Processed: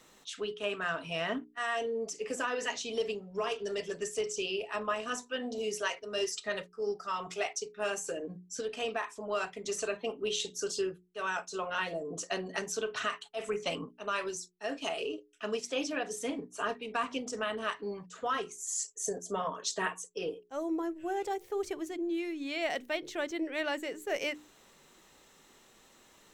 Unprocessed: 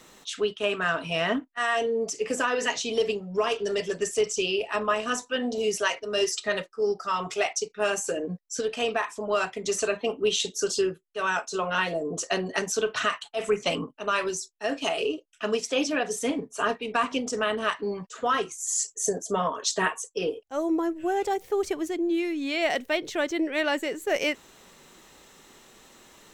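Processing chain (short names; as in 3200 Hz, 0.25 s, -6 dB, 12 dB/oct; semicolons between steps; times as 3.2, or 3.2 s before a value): notches 60/120/180/240/300/360/420 Hz; gain -7.5 dB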